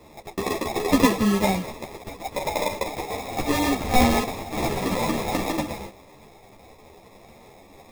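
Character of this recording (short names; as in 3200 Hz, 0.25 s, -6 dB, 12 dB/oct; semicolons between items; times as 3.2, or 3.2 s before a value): aliases and images of a low sample rate 1500 Hz, jitter 0%; a shimmering, thickened sound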